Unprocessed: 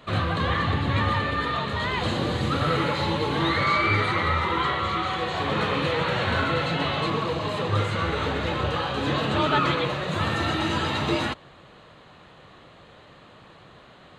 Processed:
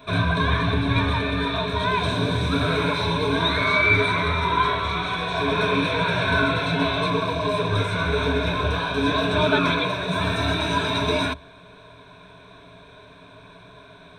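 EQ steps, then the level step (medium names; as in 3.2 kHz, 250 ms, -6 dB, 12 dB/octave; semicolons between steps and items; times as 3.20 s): rippled EQ curve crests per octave 1.6, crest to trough 17 dB; 0.0 dB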